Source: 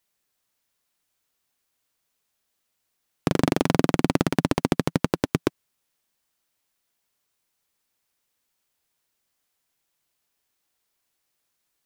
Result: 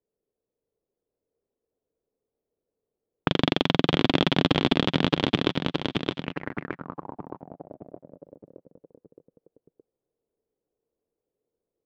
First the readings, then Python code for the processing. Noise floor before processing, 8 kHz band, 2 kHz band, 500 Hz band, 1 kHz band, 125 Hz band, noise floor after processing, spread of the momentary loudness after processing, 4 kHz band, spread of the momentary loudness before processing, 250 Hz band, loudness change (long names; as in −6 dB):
−77 dBFS, below −10 dB, +3.5 dB, 0.0 dB, +0.5 dB, −0.5 dB, below −85 dBFS, 19 LU, +10.0 dB, 5 LU, −0.5 dB, −1.0 dB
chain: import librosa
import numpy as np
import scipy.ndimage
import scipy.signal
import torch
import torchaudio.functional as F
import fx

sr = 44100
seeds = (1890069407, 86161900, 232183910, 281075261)

y = fx.echo_feedback(x, sr, ms=618, feedback_pct=50, wet_db=-3.5)
y = fx.envelope_lowpass(y, sr, base_hz=450.0, top_hz=3400.0, q=5.1, full_db=-25.0, direction='up')
y = y * 10.0 ** (-2.5 / 20.0)